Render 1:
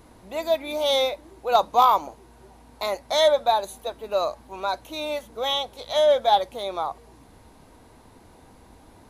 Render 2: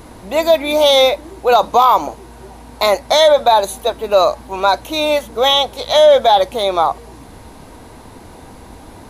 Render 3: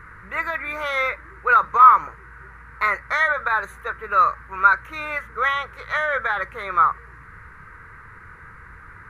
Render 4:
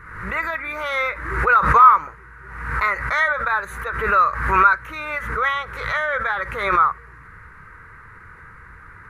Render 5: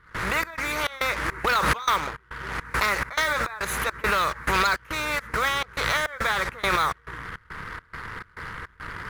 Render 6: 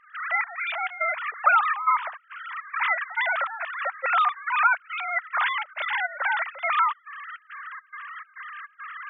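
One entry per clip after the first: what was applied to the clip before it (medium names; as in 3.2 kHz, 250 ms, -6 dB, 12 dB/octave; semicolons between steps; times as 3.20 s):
loudness maximiser +14.5 dB; trim -1 dB
FFT filter 160 Hz 0 dB, 250 Hz -18 dB, 450 Hz -7 dB, 730 Hz -21 dB, 1.3 kHz +15 dB, 1.9 kHz +13 dB, 3.3 kHz -17 dB; trim -6 dB
swell ahead of each attack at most 57 dB/s
waveshaping leveller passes 1; trance gate ".xx.xx.xx" 104 bpm -24 dB; spectrum-flattening compressor 2:1; trim -8.5 dB
formants replaced by sine waves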